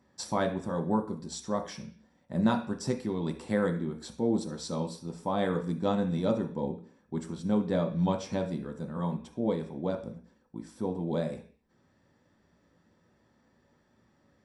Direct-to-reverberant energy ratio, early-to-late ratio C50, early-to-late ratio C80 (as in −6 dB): 2.5 dB, 11.0 dB, 16.0 dB